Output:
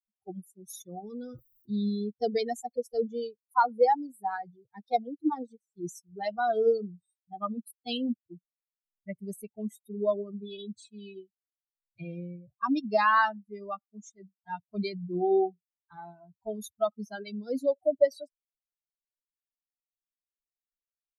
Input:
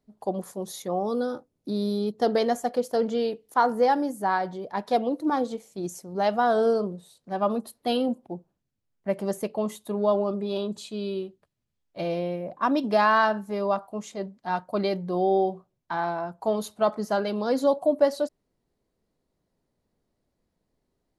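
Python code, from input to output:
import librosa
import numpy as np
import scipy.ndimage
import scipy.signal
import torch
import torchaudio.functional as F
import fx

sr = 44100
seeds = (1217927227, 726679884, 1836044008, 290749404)

y = fx.bin_expand(x, sr, power=3.0)
y = fx.sustainer(y, sr, db_per_s=46.0, at=(1.03, 1.78), fade=0.02)
y = y * 10.0 ** (2.0 / 20.0)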